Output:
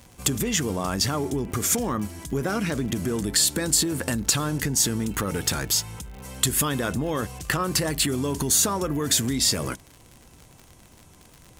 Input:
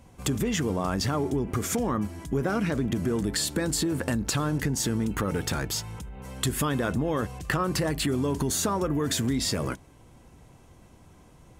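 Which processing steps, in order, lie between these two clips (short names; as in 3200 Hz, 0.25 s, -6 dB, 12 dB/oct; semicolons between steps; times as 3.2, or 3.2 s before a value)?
high shelf 3200 Hz +10.5 dB; crackle 60/s -34 dBFS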